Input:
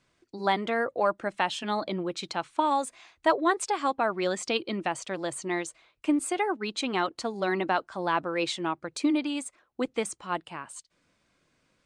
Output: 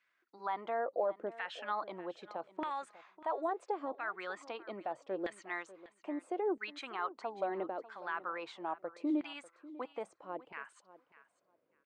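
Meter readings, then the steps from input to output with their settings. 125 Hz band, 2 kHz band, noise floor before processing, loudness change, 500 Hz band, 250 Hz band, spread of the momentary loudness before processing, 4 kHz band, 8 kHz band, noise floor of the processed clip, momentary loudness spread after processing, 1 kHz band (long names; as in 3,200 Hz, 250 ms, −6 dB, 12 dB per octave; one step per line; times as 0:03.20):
below −20 dB, −11.0 dB, −73 dBFS, −10.5 dB, −8.5 dB, −11.5 dB, 8 LU, −17.0 dB, −25.5 dB, −78 dBFS, 10 LU, −10.5 dB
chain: brickwall limiter −20 dBFS, peak gain reduction 10.5 dB
auto-filter band-pass saw down 0.76 Hz 390–2,000 Hz
repeating echo 595 ms, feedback 16%, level −17.5 dB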